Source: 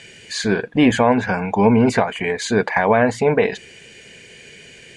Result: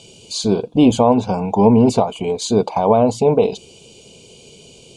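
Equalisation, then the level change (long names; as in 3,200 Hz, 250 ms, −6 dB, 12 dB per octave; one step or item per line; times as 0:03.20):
Butterworth band-reject 1,800 Hz, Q 0.84
+2.5 dB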